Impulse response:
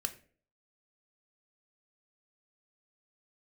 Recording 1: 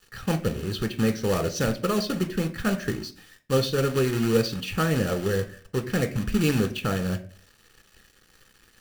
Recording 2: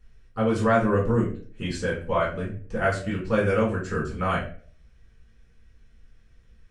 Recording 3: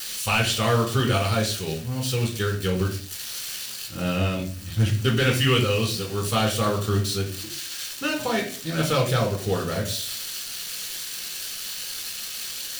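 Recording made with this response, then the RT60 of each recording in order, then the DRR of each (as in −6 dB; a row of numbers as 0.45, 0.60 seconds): 1; 0.45, 0.45, 0.45 seconds; 7.5, −7.5, −1.0 decibels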